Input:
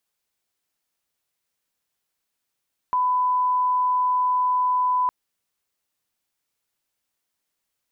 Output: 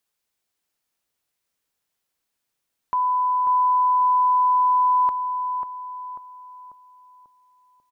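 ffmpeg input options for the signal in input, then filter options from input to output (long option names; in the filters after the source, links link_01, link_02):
-f lavfi -i "sine=frequency=1000:duration=2.16:sample_rate=44100,volume=0.06dB"
-filter_complex "[0:a]asplit=2[link_01][link_02];[link_02]adelay=542,lowpass=frequency=1100:poles=1,volume=-5dB,asplit=2[link_03][link_04];[link_04]adelay=542,lowpass=frequency=1100:poles=1,volume=0.52,asplit=2[link_05][link_06];[link_06]adelay=542,lowpass=frequency=1100:poles=1,volume=0.52,asplit=2[link_07][link_08];[link_08]adelay=542,lowpass=frequency=1100:poles=1,volume=0.52,asplit=2[link_09][link_10];[link_10]adelay=542,lowpass=frequency=1100:poles=1,volume=0.52,asplit=2[link_11][link_12];[link_12]adelay=542,lowpass=frequency=1100:poles=1,volume=0.52,asplit=2[link_13][link_14];[link_14]adelay=542,lowpass=frequency=1100:poles=1,volume=0.52[link_15];[link_01][link_03][link_05][link_07][link_09][link_11][link_13][link_15]amix=inputs=8:normalize=0"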